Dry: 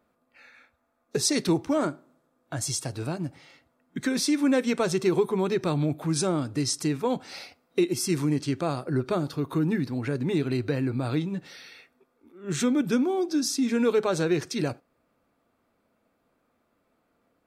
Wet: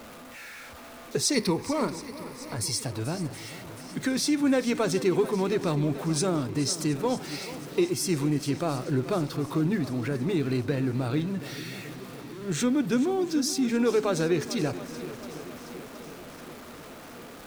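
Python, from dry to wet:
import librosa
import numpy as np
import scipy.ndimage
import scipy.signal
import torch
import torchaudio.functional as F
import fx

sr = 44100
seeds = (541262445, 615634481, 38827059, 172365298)

y = x + 0.5 * 10.0 ** (-38.0 / 20.0) * np.sign(x)
y = fx.ripple_eq(y, sr, per_octave=0.89, db=10, at=(1.34, 2.79))
y = fx.echo_swing(y, sr, ms=720, ratio=1.5, feedback_pct=56, wet_db=-15.0)
y = y * 10.0 ** (-1.5 / 20.0)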